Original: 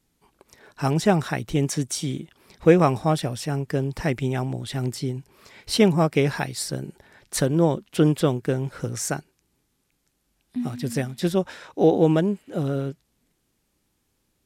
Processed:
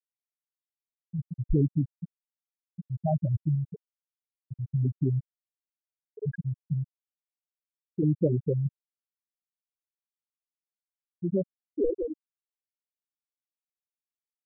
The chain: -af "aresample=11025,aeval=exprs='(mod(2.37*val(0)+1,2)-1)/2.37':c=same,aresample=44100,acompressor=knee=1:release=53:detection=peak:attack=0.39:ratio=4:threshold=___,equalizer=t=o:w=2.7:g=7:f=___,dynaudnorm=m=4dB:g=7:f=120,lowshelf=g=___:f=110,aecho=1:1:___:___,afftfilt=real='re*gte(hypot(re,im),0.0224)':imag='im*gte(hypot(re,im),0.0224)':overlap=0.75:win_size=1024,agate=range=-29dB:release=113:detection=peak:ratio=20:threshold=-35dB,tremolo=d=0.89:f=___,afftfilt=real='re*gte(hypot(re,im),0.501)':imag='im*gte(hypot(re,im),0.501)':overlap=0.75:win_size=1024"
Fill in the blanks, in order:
-27dB, 740, 11, 222, 0.0708, 0.6